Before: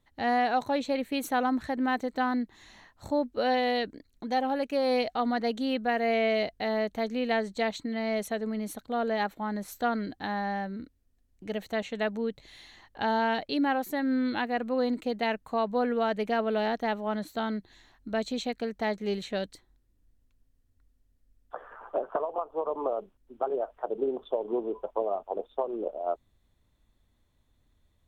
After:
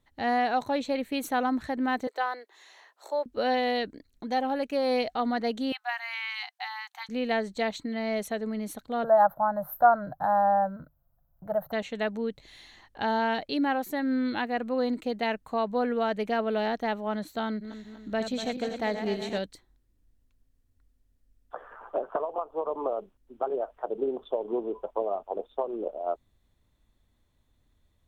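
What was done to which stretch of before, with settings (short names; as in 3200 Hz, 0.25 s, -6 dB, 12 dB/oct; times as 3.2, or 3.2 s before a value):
2.07–3.26 steep high-pass 380 Hz 48 dB/oct
5.72–7.09 brick-wall FIR high-pass 720 Hz
9.04–11.72 EQ curve 100 Hz 0 dB, 150 Hz +14 dB, 220 Hz -8 dB, 420 Hz -12 dB, 600 Hz +13 dB, 1500 Hz +5 dB, 2400 Hz -29 dB, 4100 Hz -21 dB, 8100 Hz -27 dB, 13000 Hz +11 dB
17.48–19.39 regenerating reverse delay 0.121 s, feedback 73%, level -8 dB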